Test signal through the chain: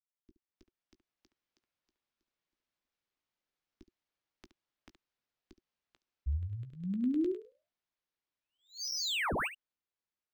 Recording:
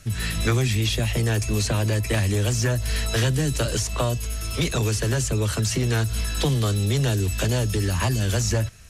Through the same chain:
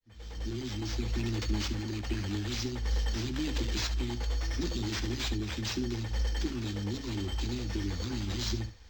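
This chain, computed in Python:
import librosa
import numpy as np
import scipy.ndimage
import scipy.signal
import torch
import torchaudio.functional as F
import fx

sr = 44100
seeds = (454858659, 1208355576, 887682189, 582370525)

y = fx.fade_in_head(x, sr, length_s=1.31)
y = scipy.signal.sosfilt(scipy.signal.cheby1(5, 1.0, [360.0, 4600.0], 'bandstop', fs=sr, output='sos'), y)
y = fx.band_shelf(y, sr, hz=2400.0, db=-13.5, octaves=1.7)
y = fx.rider(y, sr, range_db=10, speed_s=2.0)
y = fx.filter_lfo_notch(y, sr, shape='saw_down', hz=9.8, low_hz=380.0, high_hz=3700.0, q=1.9)
y = fx.fixed_phaser(y, sr, hz=340.0, stages=4)
y = fx.room_early_taps(y, sr, ms=(16, 70), db=(-10.5, -12.5))
y = np.interp(np.arange(len(y)), np.arange(len(y))[::4], y[::4])
y = y * librosa.db_to_amplitude(-3.5)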